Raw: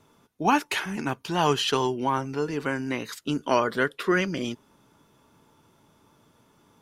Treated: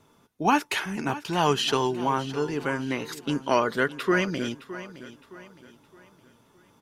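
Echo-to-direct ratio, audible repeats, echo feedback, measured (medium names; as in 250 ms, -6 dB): -14.5 dB, 3, 39%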